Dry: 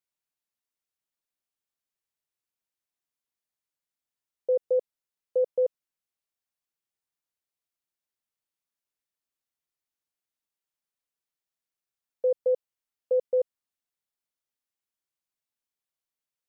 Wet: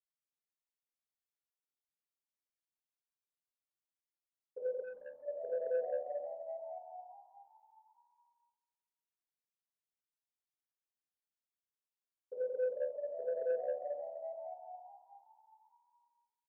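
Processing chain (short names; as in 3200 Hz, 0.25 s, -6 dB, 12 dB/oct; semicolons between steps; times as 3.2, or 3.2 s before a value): level quantiser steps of 18 dB; frequency-shifting echo 0.406 s, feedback 45%, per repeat +74 Hz, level -4.5 dB; reverb RT60 1.3 s, pre-delay 77 ms; soft clip -33.5 dBFS, distortion -21 dB; spectral gain 4.84–5.25, 340–750 Hz -13 dB; gain +7.5 dB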